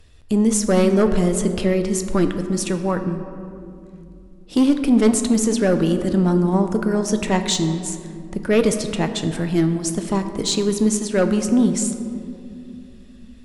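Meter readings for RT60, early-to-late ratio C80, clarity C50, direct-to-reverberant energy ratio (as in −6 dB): 2.6 s, 9.5 dB, 9.0 dB, 7.0 dB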